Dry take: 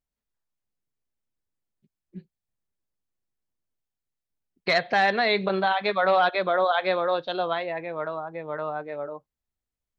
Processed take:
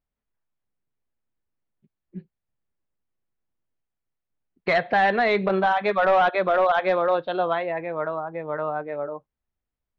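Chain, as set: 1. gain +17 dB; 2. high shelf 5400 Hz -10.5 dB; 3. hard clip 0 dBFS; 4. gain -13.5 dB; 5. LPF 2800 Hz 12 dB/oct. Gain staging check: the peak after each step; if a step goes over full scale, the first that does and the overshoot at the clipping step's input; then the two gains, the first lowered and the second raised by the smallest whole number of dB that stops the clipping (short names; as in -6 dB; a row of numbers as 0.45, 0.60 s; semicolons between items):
+6.5, +5.5, 0.0, -13.5, -13.0 dBFS; step 1, 5.5 dB; step 1 +11 dB, step 4 -7.5 dB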